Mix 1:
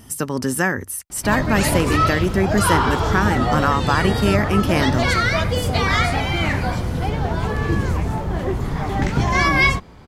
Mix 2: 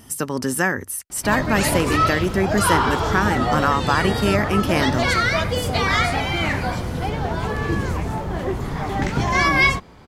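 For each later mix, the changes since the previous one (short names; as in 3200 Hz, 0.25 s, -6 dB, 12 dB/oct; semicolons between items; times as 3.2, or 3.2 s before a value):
master: add low shelf 170 Hz -5 dB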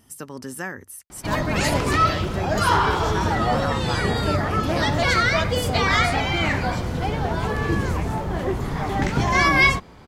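speech -11.0 dB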